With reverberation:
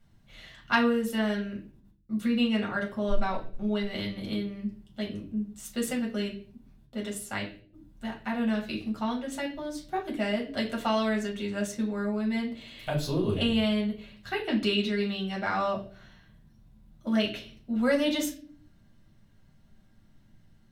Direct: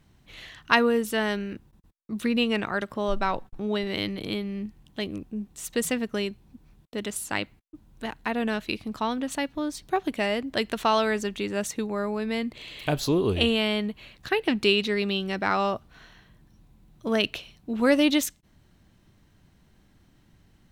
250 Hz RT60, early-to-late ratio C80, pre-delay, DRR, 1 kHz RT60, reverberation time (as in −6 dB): 0.85 s, 15.0 dB, 5 ms, −2.5 dB, 0.35 s, 0.45 s